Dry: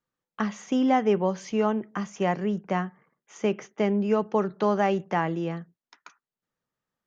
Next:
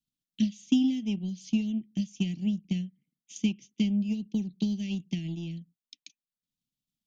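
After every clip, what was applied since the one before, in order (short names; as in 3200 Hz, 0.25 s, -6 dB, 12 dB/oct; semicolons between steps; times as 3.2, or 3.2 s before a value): elliptic band-stop 290–3500 Hz, stop band 60 dB; transient shaper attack +8 dB, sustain -5 dB; fifteen-band EQ 100 Hz -5 dB, 400 Hz -11 dB, 2500 Hz +8 dB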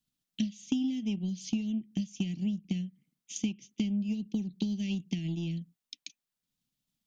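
compressor 3:1, threshold -36 dBFS, peak gain reduction 13 dB; gain +5 dB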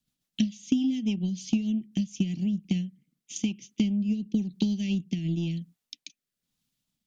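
rotary speaker horn 7 Hz, later 1 Hz, at 1.85; gain +6 dB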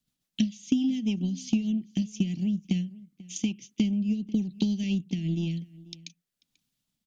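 outdoor echo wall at 84 m, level -20 dB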